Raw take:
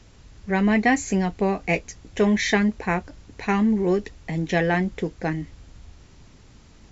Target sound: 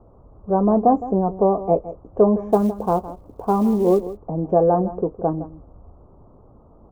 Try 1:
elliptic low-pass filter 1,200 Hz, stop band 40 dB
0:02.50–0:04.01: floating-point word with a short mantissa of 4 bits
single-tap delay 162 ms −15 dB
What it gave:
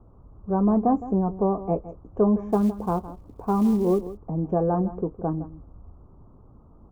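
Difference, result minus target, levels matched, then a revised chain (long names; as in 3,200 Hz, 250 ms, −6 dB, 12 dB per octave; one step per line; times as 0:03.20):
500 Hz band −2.5 dB
elliptic low-pass filter 1,200 Hz, stop band 40 dB
parametric band 590 Hz +9.5 dB 1.4 octaves
0:02.50–0:04.01: floating-point word with a short mantissa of 4 bits
single-tap delay 162 ms −15 dB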